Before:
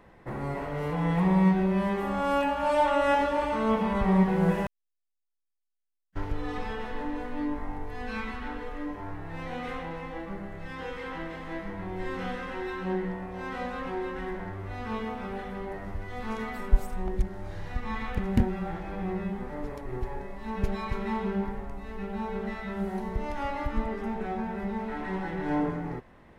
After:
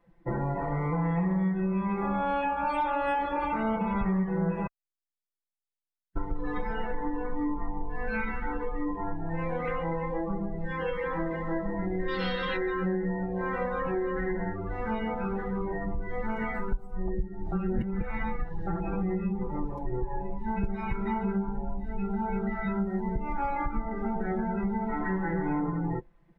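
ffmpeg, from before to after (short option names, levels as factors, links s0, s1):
-filter_complex "[0:a]asettb=1/sr,asplit=3[s0][s1][s2];[s0]atrim=end=12.084[s3];[s1]atrim=start=12.08:end=12.57,asetpts=PTS-STARTPTS,afade=t=in:d=0.004:c=qsin,afade=t=out:st=0.486:d=0.004:c=qsin,equalizer=f=4500:w=0.91:g=14.5[s4];[s2]atrim=start=12.566[s5];[s3][s4]acrossfade=d=0.004:c1=hsin:c2=qsin[s6];[s6][s5]acrossfade=d=0.004:c1=qsin:c2=hsin,asplit=3[s7][s8][s9];[s7]atrim=end=17.522[s10];[s8]atrim=start=17.518:end=18.672,asetpts=PTS-STARTPTS,areverse[s11];[s9]atrim=start=18.668[s12];[s10][s11]acrossfade=d=0.004:c1=hsin:c2=hsin[s13];[s13][s12]acrossfade=d=0.004:c1=hsin:c2=hsin,aecho=1:1:5.9:0.72,afftdn=nr=22:nf=-37,acompressor=threshold=0.0282:ratio=6,volume=1.78"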